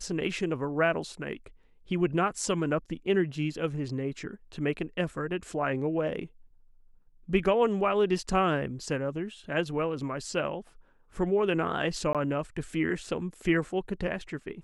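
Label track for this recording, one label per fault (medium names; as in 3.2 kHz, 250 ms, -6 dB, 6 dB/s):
12.130000	12.150000	dropout 17 ms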